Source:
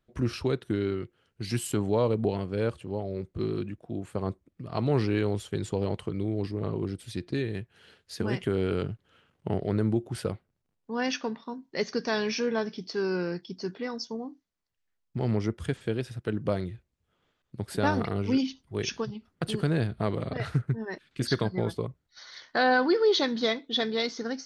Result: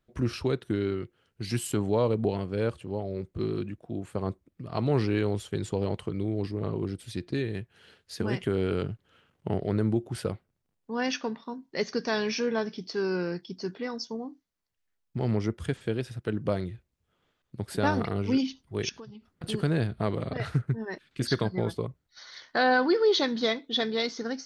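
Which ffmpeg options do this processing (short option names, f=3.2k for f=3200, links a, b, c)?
-filter_complex "[0:a]asettb=1/sr,asplit=3[a][b][c];[a]atrim=end=18.894[d];[b]atrim=start=18.89:end=19.44,asetpts=PTS-STARTPTS,afade=t=in:d=0.004:c=qsin,afade=t=out:st=0.546:d=0.004:c=qsin,acompressor=threshold=-45dB:ratio=3:attack=3.2:release=140:knee=1:detection=peak[e];[c]atrim=start=19.436[f];[d][e]acrossfade=d=0.004:c1=hsin:c2=qsin[g];[g][f]acrossfade=d=0.004:c1=qsin:c2=hsin"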